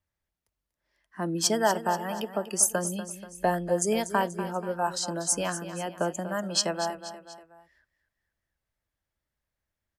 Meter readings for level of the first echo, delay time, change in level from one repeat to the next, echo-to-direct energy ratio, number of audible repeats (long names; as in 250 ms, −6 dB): −12.0 dB, 241 ms, −6.0 dB, −11.0 dB, 3